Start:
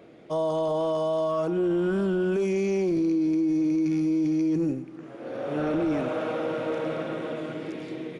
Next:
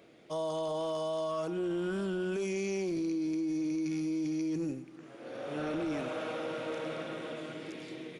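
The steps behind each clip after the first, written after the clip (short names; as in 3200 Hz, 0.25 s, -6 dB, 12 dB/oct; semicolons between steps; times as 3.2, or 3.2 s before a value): high shelf 2100 Hz +11 dB; gain -9 dB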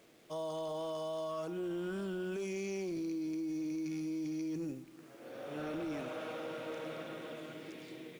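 requantised 10-bit, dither none; gain -5 dB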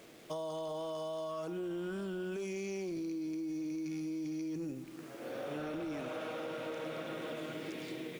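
compressor 6:1, threshold -44 dBFS, peak gain reduction 8 dB; gain +7 dB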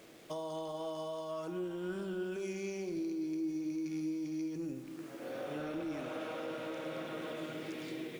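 on a send at -9 dB: brick-wall FIR high-pass 160 Hz + reverb RT60 2.3 s, pre-delay 4 ms; on the sum: gain -1 dB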